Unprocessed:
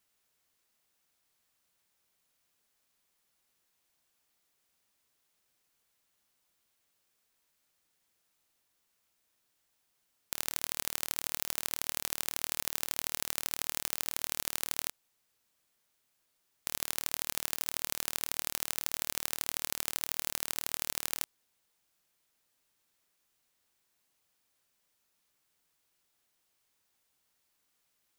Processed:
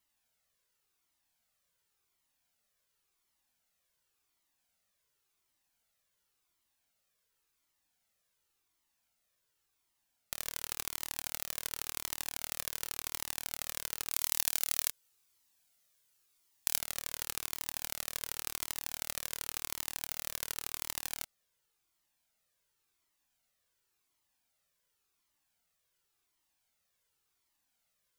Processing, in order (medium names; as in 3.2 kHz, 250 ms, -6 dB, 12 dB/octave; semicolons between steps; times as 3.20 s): 14.11–16.78 s: treble shelf 2.9 kHz +8 dB; Shepard-style flanger falling 0.91 Hz; trim +1 dB